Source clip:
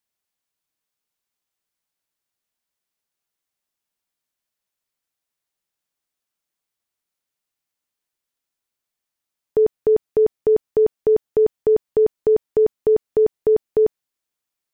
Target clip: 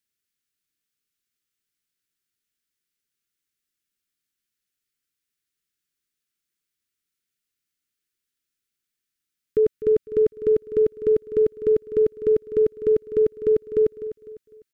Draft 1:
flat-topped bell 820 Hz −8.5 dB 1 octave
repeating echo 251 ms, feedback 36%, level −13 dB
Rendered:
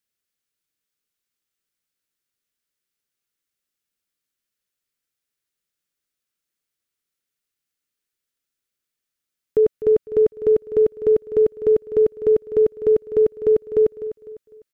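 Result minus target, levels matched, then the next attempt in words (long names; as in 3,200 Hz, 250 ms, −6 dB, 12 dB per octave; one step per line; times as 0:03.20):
1,000 Hz band +5.0 dB
Butterworth band-reject 740 Hz, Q 0.92
flat-topped bell 820 Hz −8.5 dB 1 octave
repeating echo 251 ms, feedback 36%, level −13 dB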